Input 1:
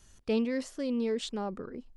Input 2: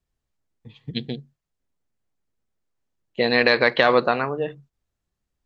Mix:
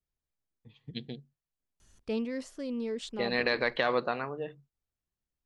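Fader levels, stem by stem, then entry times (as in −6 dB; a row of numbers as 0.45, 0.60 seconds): −4.0, −11.0 decibels; 1.80, 0.00 seconds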